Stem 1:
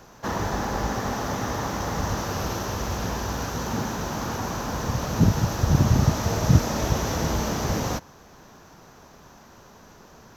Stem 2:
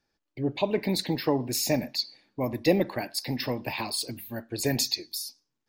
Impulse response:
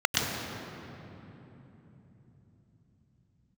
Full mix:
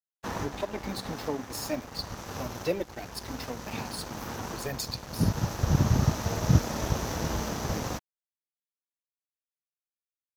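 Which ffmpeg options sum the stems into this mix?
-filter_complex "[0:a]aeval=exprs='sgn(val(0))*max(abs(val(0))-0.00501,0)':channel_layout=same,volume=-3.5dB[link_01];[1:a]bandreject=frequency=92.71:width_type=h:width=4,bandreject=frequency=185.42:width_type=h:width=4,bandreject=frequency=278.13:width_type=h:width=4,flanger=delay=1.1:depth=3.6:regen=-20:speed=0.41:shape=triangular,volume=-2.5dB,asplit=2[link_02][link_03];[link_03]apad=whole_len=456878[link_04];[link_01][link_04]sidechaincompress=threshold=-34dB:ratio=10:attack=39:release=974[link_05];[link_05][link_02]amix=inputs=2:normalize=0,aeval=exprs='sgn(val(0))*max(abs(val(0))-0.00841,0)':channel_layout=same"

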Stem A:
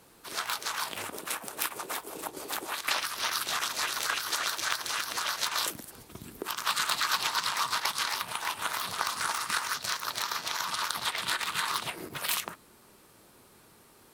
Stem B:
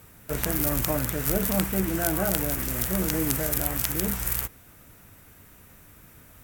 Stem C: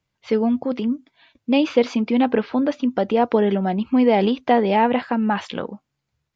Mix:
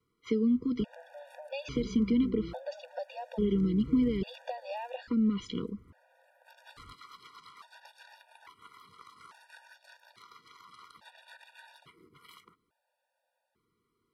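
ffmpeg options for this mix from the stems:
ffmpeg -i stem1.wav -i stem2.wav -i stem3.wav -filter_complex "[0:a]lowpass=8700,equalizer=frequency=6800:width_type=o:width=1.3:gain=-11.5,volume=-17.5dB[link_01];[1:a]lowpass=1400,acompressor=threshold=-33dB:ratio=10,adelay=500,volume=-1.5dB[link_02];[2:a]agate=range=-6dB:threshold=-48dB:ratio=16:detection=peak,acompressor=threshold=-18dB:ratio=6,volume=-3dB,asplit=2[link_03][link_04];[link_04]apad=whole_len=623165[link_05];[link_01][link_05]sidechaincompress=threshold=-41dB:ratio=8:attack=16:release=367[link_06];[link_06][link_02][link_03]amix=inputs=3:normalize=0,acrossover=split=420|3000[link_07][link_08][link_09];[link_08]acompressor=threshold=-46dB:ratio=3[link_10];[link_07][link_10][link_09]amix=inputs=3:normalize=0,afftfilt=real='re*gt(sin(2*PI*0.59*pts/sr)*(1-2*mod(floor(b*sr/1024/480),2)),0)':imag='im*gt(sin(2*PI*0.59*pts/sr)*(1-2*mod(floor(b*sr/1024/480),2)),0)':win_size=1024:overlap=0.75" out.wav

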